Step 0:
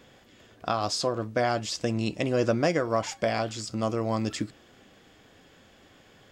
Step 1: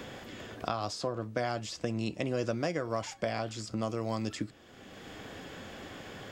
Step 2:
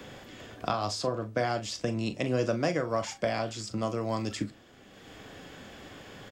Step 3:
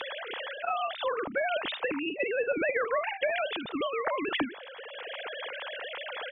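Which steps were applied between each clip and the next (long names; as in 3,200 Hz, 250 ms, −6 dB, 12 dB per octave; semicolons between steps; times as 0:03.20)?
parametric band 82 Hz +2.5 dB 1 octave; multiband upward and downward compressor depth 70%; level −6.5 dB
double-tracking delay 39 ms −12 dB; on a send at −18 dB: convolution reverb RT60 0.40 s, pre-delay 7 ms; on the sum: multiband upward and downward expander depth 40%; level +3 dB
three sine waves on the formant tracks; treble cut that deepens with the level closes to 2,600 Hz, closed at −24 dBFS; every bin compressed towards the loudest bin 2 to 1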